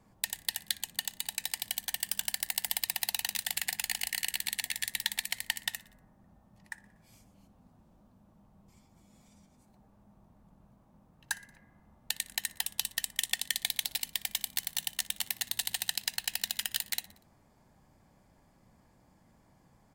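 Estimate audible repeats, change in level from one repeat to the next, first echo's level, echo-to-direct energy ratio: 3, -5.0 dB, -21.0 dB, -19.5 dB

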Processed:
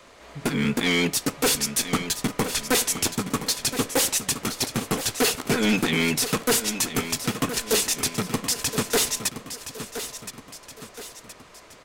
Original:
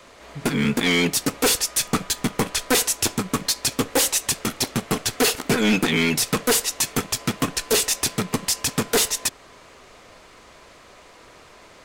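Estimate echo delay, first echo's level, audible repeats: 1020 ms, -11.0 dB, 3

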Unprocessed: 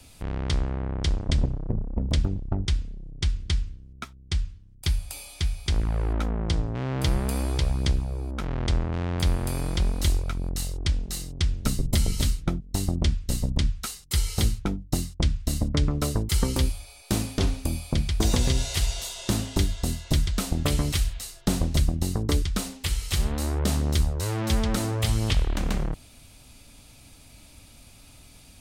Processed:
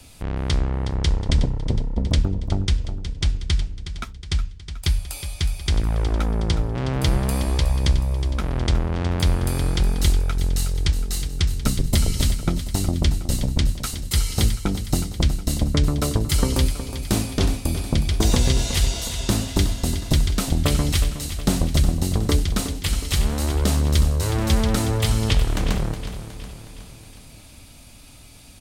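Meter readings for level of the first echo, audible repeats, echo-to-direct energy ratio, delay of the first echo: -11.0 dB, 5, -9.5 dB, 366 ms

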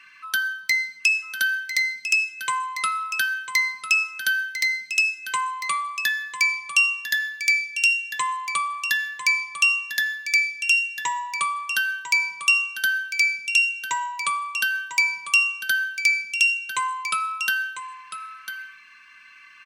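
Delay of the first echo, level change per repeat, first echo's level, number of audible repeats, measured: 999 ms, no regular repeats, -10.5 dB, 1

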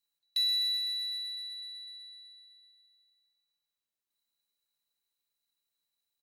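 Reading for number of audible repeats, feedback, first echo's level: 2, 30%, -17.5 dB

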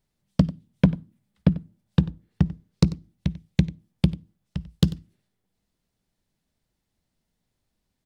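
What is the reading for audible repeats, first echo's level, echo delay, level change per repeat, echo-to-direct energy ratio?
1, -18.5 dB, 93 ms, no regular repeats, -18.5 dB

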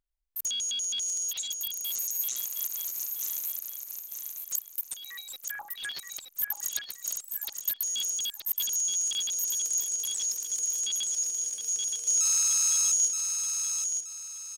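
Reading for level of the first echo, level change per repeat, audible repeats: -5.5 dB, -10.0 dB, 3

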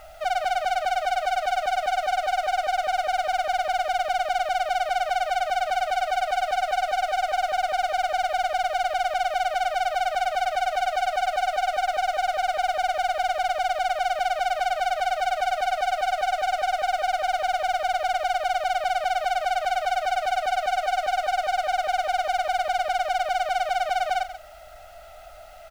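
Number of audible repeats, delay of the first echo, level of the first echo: 1, 135 ms, -13.0 dB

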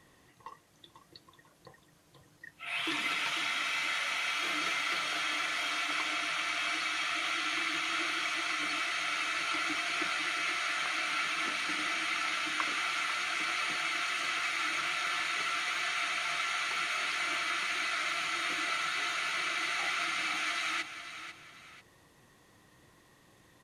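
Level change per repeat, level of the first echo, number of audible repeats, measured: -8.5 dB, -11.0 dB, 2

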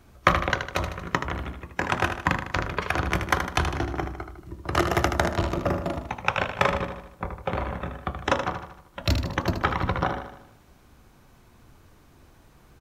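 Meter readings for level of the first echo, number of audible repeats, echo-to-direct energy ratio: -8.0 dB, 5, -6.5 dB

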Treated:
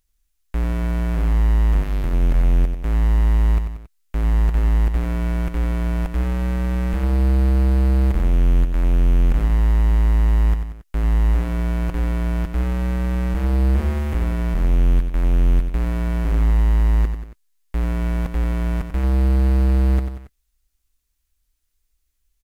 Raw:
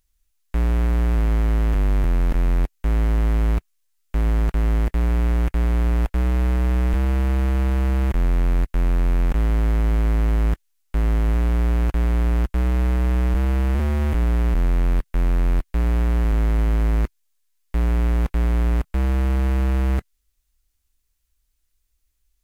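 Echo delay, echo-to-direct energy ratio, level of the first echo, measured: 92 ms, -6.5 dB, -8.0 dB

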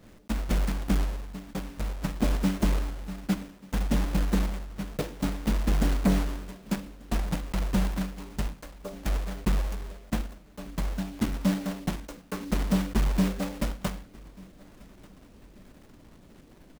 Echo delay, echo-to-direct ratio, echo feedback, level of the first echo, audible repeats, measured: 1190 ms, -23.5 dB, 31%, -24.0 dB, 2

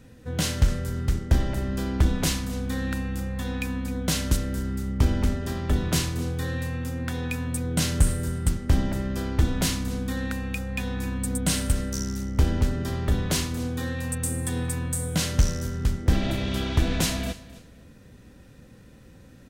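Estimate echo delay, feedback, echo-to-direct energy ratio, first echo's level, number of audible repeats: 262 ms, 25%, -17.5 dB, -18.0 dB, 2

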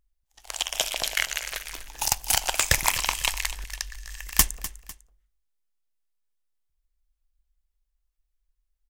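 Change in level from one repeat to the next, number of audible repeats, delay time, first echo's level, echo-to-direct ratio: -8.0 dB, 2, 250 ms, -15.0 dB, -14.5 dB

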